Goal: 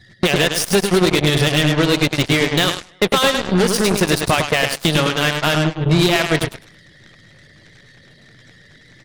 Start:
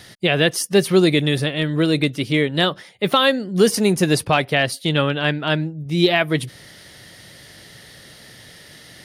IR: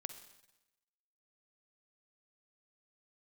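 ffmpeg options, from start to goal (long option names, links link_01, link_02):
-filter_complex "[0:a]afftdn=noise_reduction=25:noise_floor=-41,lowpass=9400,adynamicequalizer=threshold=0.0355:dfrequency=250:dqfactor=0.98:tfrequency=250:tqfactor=0.98:attack=5:release=100:ratio=0.375:range=3:mode=cutabove:tftype=bell,acompressor=threshold=-30dB:ratio=8,asplit=2[link_01][link_02];[link_02]aecho=0:1:103|206|309|412|515:0.531|0.218|0.0892|0.0366|0.015[link_03];[link_01][link_03]amix=inputs=2:normalize=0,apsyclip=23.5dB,aeval=exprs='1.06*(cos(1*acos(clip(val(0)/1.06,-1,1)))-cos(1*PI/2))+0.376*(cos(2*acos(clip(val(0)/1.06,-1,1)))-cos(2*PI/2))+0.188*(cos(4*acos(clip(val(0)/1.06,-1,1)))-cos(4*PI/2))+0.188*(cos(7*acos(clip(val(0)/1.06,-1,1)))-cos(7*PI/2))':channel_layout=same,volume=-7.5dB"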